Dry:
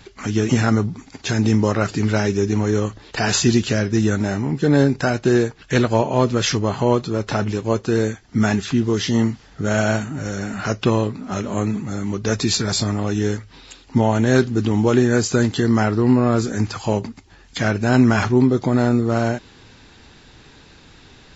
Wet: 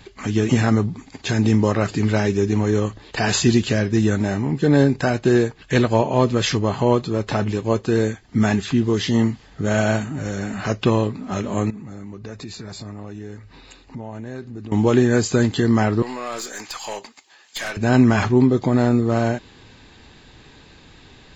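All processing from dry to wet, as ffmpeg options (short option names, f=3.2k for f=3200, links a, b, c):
-filter_complex "[0:a]asettb=1/sr,asplit=3[a][b][c];[a]atrim=end=11.704[d];[b]atrim=start=11.7:end=14.72,asetpts=PTS-STARTPTS,afade=t=in:d=0.004:c=qsin,afade=t=out:st=3.016:d=0.004:c=qsin,highshelf=f=4.2k:g=-6.5,acompressor=threshold=-35dB:ratio=3:attack=3.2:release=140:knee=1:detection=peak,bandreject=f=3.2k:w=7.3[e];[c]atrim=start=14.716[f];[d][e]acrossfade=d=0.004:c1=hsin:c2=qsin[g];[g][f]acrossfade=d=0.004:c1=qsin:c2=hsin,asettb=1/sr,asplit=3[h][i][j];[h]atrim=end=16.024[k];[i]atrim=start=16.02:end=17.77,asetpts=PTS-STARTPTS,afade=t=in:d=0.004:c=qsin,afade=t=out:st=1.746:d=0.004:c=qsin,highpass=680,highshelf=f=3.7k:g=8.5,aeval=exprs='(tanh(12.6*val(0)+0.25)-tanh(0.25))/12.6':c=same[l];[j]atrim=start=17.766[m];[k][l]acrossfade=d=0.004:c1=hsin:c2=qsin[n];[n][m]acrossfade=d=0.004:c1=qsin:c2=hsin,equalizer=f=5.7k:t=o:w=0.27:g=-7,bandreject=f=1.4k:w=12"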